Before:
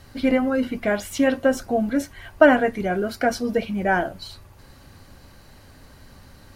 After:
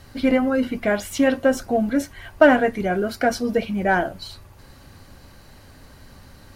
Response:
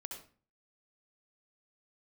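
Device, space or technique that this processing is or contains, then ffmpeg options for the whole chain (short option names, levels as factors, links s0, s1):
parallel distortion: -filter_complex "[0:a]asplit=2[s0][s1];[s1]asoftclip=type=hard:threshold=0.2,volume=0.316[s2];[s0][s2]amix=inputs=2:normalize=0,volume=0.891"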